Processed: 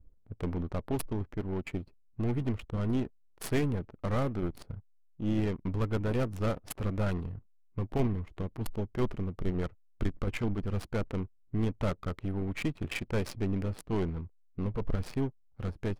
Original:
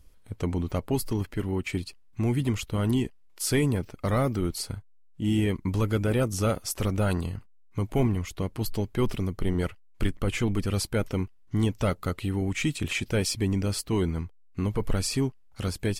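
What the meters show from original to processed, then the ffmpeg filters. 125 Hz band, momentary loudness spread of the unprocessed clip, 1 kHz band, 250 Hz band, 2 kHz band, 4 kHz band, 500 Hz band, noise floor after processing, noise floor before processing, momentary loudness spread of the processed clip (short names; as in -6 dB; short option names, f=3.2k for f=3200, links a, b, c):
-5.5 dB, 8 LU, -5.0 dB, -5.5 dB, -7.0 dB, -12.0 dB, -5.0 dB, -62 dBFS, -53 dBFS, 9 LU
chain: -af "aeval=exprs='if(lt(val(0),0),0.447*val(0),val(0))':c=same,aexciter=amount=4.6:drive=4.9:freq=10k,adynamicsmooth=sensitivity=5:basefreq=530,volume=-2dB"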